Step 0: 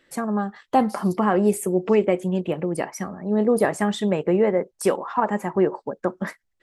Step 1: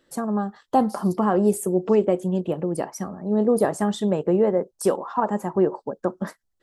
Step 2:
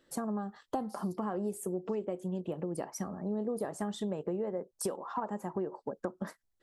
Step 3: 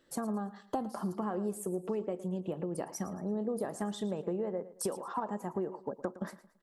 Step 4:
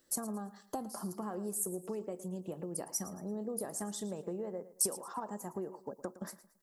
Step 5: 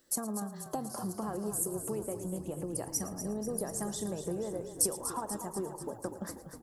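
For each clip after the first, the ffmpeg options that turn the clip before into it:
ffmpeg -i in.wav -af "equalizer=frequency=2200:width_type=o:width=0.78:gain=-12.5" out.wav
ffmpeg -i in.wav -af "acompressor=threshold=-28dB:ratio=6,volume=-4dB" out.wav
ffmpeg -i in.wav -af "aecho=1:1:112|224|336:0.158|0.0539|0.0183" out.wav
ffmpeg -i in.wav -af "aexciter=amount=5.2:drive=3.3:freq=4700,volume=-5dB" out.wav
ffmpeg -i in.wav -filter_complex "[0:a]asplit=9[link_01][link_02][link_03][link_04][link_05][link_06][link_07][link_08][link_09];[link_02]adelay=243,afreqshift=-33,volume=-9.5dB[link_10];[link_03]adelay=486,afreqshift=-66,volume=-13.4dB[link_11];[link_04]adelay=729,afreqshift=-99,volume=-17.3dB[link_12];[link_05]adelay=972,afreqshift=-132,volume=-21.1dB[link_13];[link_06]adelay=1215,afreqshift=-165,volume=-25dB[link_14];[link_07]adelay=1458,afreqshift=-198,volume=-28.9dB[link_15];[link_08]adelay=1701,afreqshift=-231,volume=-32.8dB[link_16];[link_09]adelay=1944,afreqshift=-264,volume=-36.6dB[link_17];[link_01][link_10][link_11][link_12][link_13][link_14][link_15][link_16][link_17]amix=inputs=9:normalize=0,volume=2.5dB" out.wav

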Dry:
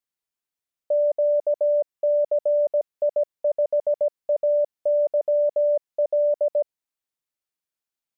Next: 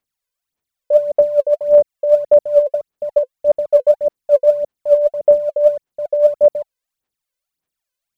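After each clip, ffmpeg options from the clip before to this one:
ffmpeg -i in.wav -af "aphaser=in_gain=1:out_gain=1:delay=2:decay=0.74:speed=1.7:type=sinusoidal,volume=2.5dB" out.wav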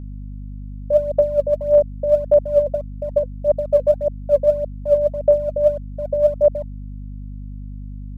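ffmpeg -i in.wav -af "aeval=exprs='val(0)+0.0447*(sin(2*PI*50*n/s)+sin(2*PI*2*50*n/s)/2+sin(2*PI*3*50*n/s)/3+sin(2*PI*4*50*n/s)/4+sin(2*PI*5*50*n/s)/5)':channel_layout=same,volume=-3.5dB" out.wav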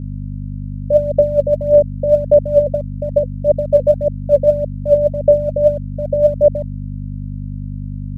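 ffmpeg -i in.wav -af "equalizer=frequency=125:width_type=o:width=1:gain=10,equalizer=frequency=250:width_type=o:width=1:gain=5,equalizer=frequency=500:width_type=o:width=1:gain=4,equalizer=frequency=1000:width_type=o:width=1:gain=-9,volume=2dB" out.wav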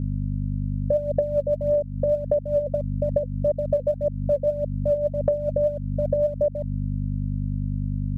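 ffmpeg -i in.wav -af "acompressor=threshold=-19dB:ratio=10" out.wav

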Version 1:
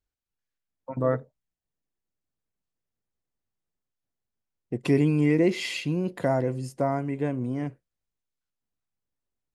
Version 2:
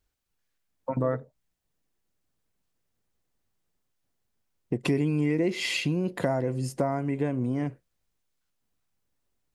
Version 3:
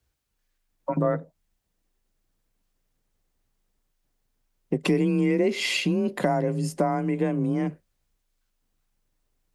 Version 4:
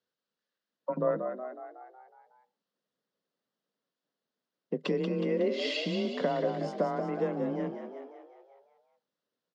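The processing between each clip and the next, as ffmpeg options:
ffmpeg -i in.wav -af "acompressor=threshold=-35dB:ratio=3,volume=8.5dB" out.wav
ffmpeg -i in.wav -af "afreqshift=26,volume=3dB" out.wav
ffmpeg -i in.wav -filter_complex "[0:a]highpass=frequency=190:width=0.5412,highpass=frequency=190:width=1.3066,equalizer=frequency=320:width_type=q:width=4:gain=-7,equalizer=frequency=500:width_type=q:width=4:gain=5,equalizer=frequency=800:width_type=q:width=4:gain=-6,equalizer=frequency=2300:width_type=q:width=4:gain=-10,lowpass=frequency=4900:width=0.5412,lowpass=frequency=4900:width=1.3066,asplit=8[link_01][link_02][link_03][link_04][link_05][link_06][link_07][link_08];[link_02]adelay=184,afreqshift=47,volume=-7dB[link_09];[link_03]adelay=368,afreqshift=94,volume=-12dB[link_10];[link_04]adelay=552,afreqshift=141,volume=-17.1dB[link_11];[link_05]adelay=736,afreqshift=188,volume=-22.1dB[link_12];[link_06]adelay=920,afreqshift=235,volume=-27.1dB[link_13];[link_07]adelay=1104,afreqshift=282,volume=-32.2dB[link_14];[link_08]adelay=1288,afreqshift=329,volume=-37.2dB[link_15];[link_01][link_09][link_10][link_11][link_12][link_13][link_14][link_15]amix=inputs=8:normalize=0,volume=-5dB" out.wav

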